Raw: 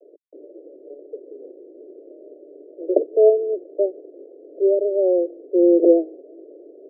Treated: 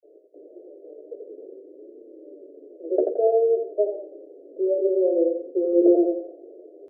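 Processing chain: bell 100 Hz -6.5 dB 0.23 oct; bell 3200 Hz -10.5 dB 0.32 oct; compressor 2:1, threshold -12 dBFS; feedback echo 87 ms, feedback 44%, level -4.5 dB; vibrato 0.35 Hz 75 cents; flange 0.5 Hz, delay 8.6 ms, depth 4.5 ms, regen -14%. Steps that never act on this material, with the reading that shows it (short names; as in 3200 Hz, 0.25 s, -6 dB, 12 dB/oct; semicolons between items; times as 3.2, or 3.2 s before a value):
bell 100 Hz: input band starts at 270 Hz; bell 3200 Hz: input band ends at 720 Hz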